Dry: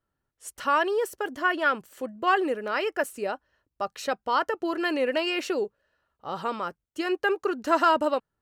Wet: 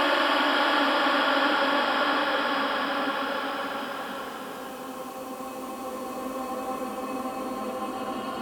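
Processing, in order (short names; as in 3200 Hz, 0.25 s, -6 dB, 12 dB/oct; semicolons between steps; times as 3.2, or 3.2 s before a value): spectral limiter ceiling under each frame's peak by 19 dB; dynamic EQ 2100 Hz, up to -6 dB, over -41 dBFS, Q 1.6; Paulstretch 18×, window 0.50 s, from 1.63; gain +3.5 dB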